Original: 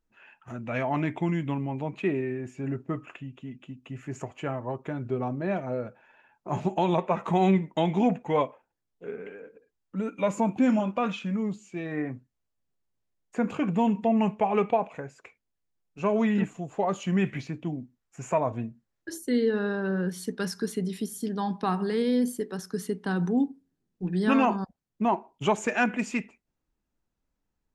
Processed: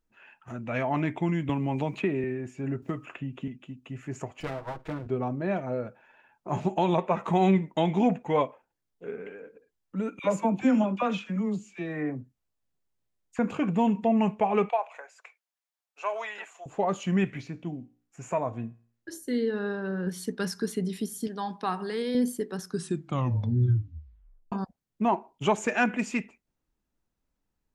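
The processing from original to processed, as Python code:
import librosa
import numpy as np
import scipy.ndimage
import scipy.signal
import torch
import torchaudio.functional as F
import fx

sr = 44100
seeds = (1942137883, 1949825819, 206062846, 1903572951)

y = fx.band_squash(x, sr, depth_pct=100, at=(1.49, 2.24))
y = fx.band_squash(y, sr, depth_pct=100, at=(2.82, 3.48))
y = fx.lower_of_two(y, sr, delay_ms=6.3, at=(4.4, 5.07))
y = fx.dispersion(y, sr, late='lows', ms=54.0, hz=1000.0, at=(10.19, 13.39))
y = fx.highpass(y, sr, hz=650.0, slope=24, at=(14.69, 16.66))
y = fx.comb_fb(y, sr, f0_hz=58.0, decay_s=0.48, harmonics='all', damping=0.0, mix_pct=40, at=(17.24, 20.07))
y = fx.low_shelf(y, sr, hz=300.0, db=-11.5, at=(21.27, 22.15))
y = fx.edit(y, sr, fx.tape_stop(start_s=22.66, length_s=1.86), tone=tone)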